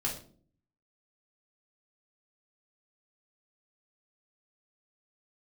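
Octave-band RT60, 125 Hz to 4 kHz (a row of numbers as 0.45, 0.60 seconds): 0.80, 0.75, 0.55, 0.40, 0.35, 0.35 seconds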